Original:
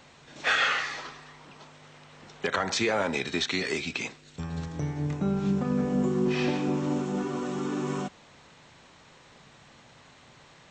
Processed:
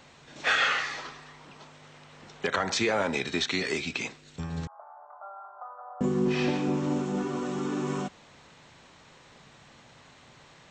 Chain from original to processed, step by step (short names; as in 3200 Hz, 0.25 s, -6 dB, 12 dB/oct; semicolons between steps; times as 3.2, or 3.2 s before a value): 4.67–6.01 Chebyshev band-pass 620–1400 Hz, order 4